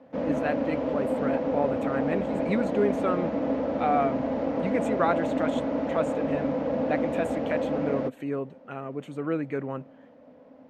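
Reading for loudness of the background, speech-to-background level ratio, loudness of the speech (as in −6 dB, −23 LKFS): −28.5 LKFS, −3.0 dB, −31.5 LKFS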